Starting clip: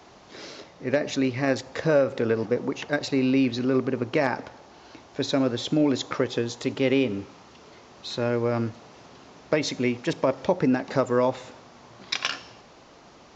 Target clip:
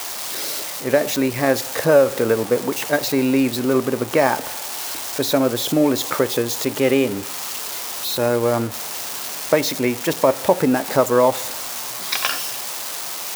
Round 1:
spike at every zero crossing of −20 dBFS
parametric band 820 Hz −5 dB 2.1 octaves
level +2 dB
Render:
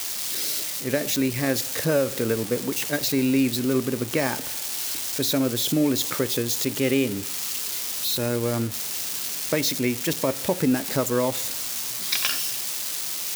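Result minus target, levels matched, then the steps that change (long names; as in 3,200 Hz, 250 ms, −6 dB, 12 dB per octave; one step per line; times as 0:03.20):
1,000 Hz band −7.0 dB
change: parametric band 820 Hz +7 dB 2.1 octaves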